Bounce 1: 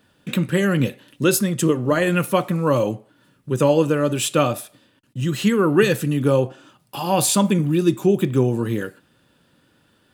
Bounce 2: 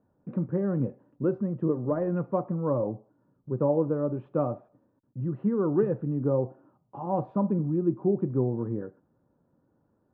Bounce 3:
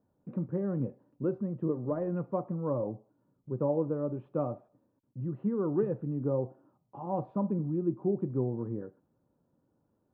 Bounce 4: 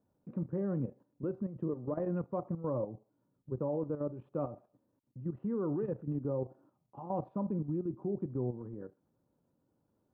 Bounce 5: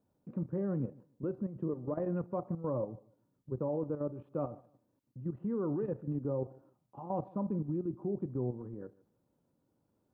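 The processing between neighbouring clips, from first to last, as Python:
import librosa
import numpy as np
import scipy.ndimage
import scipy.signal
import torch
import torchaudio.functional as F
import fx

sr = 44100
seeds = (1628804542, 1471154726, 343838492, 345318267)

y1 = scipy.signal.sosfilt(scipy.signal.butter(4, 1000.0, 'lowpass', fs=sr, output='sos'), x)
y1 = y1 * 10.0 ** (-8.0 / 20.0)
y2 = fx.peak_eq(y1, sr, hz=1600.0, db=-3.0, octaves=0.73)
y2 = y2 * 10.0 ** (-4.5 / 20.0)
y3 = fx.level_steps(y2, sr, step_db=11)
y4 = fx.echo_feedback(y3, sr, ms=149, feedback_pct=20, wet_db=-22.5)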